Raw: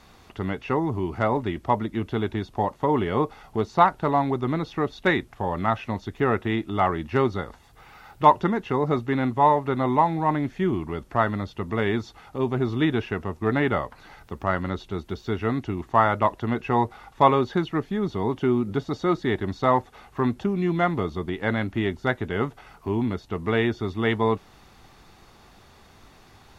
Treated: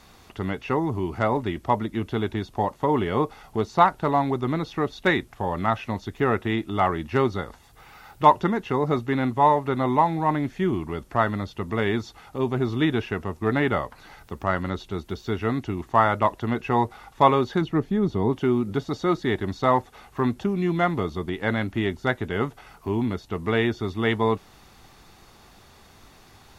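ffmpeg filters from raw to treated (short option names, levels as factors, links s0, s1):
-filter_complex "[0:a]asettb=1/sr,asplit=3[s0][s1][s2];[s0]atrim=end=17.614[s3];[s1]atrim=start=17.61:end=18.33,asetpts=PTS-STARTPTS,afade=t=in:d=0.004:c=qsin,afade=t=out:st=0.716:d=0.004:c=qsin,tiltshelf=f=710:g=4.5[s4];[s2]atrim=start=18.326[s5];[s3][s4]acrossfade=d=0.004:c1=hsin:c2=qsin[s6];[s6][s5]acrossfade=d=0.004:c1=qsin:c2=hsin,highshelf=f=5500:g=6"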